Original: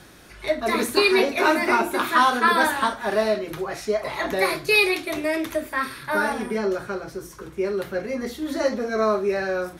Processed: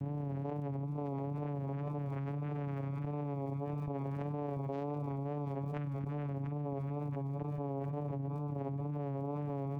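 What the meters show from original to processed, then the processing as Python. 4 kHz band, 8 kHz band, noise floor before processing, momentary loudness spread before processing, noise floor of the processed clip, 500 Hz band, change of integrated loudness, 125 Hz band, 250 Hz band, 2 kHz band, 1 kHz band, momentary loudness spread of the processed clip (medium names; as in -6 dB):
under -35 dB, under -40 dB, -44 dBFS, 11 LU, -39 dBFS, -18.5 dB, -16.0 dB, +8.0 dB, -11.5 dB, -35.0 dB, -21.0 dB, 0 LU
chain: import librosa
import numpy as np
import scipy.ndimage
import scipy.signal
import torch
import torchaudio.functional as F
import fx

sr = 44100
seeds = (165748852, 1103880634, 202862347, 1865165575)

y = scipy.signal.medfilt(x, 41)
y = fx.rider(y, sr, range_db=5, speed_s=0.5)
y = fx.tilt_eq(y, sr, slope=-1.5)
y = fx.vocoder(y, sr, bands=4, carrier='saw', carrier_hz=142.0)
y = fx.high_shelf(y, sr, hz=3200.0, db=-7.0)
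y = fx.gate_flip(y, sr, shuts_db=-28.0, range_db=-25)
y = y + 0.63 * np.pad(y, (int(7.1 * sr / 1000.0), 0))[:len(y)]
y = fx.echo_feedback(y, sr, ms=691, feedback_pct=55, wet_db=-11)
y = fx.wow_flutter(y, sr, seeds[0], rate_hz=2.1, depth_cents=53.0)
y = fx.dmg_crackle(y, sr, seeds[1], per_s=200.0, level_db=-74.0)
y = fx.env_flatten(y, sr, amount_pct=100)
y = y * 10.0 ** (-5.5 / 20.0)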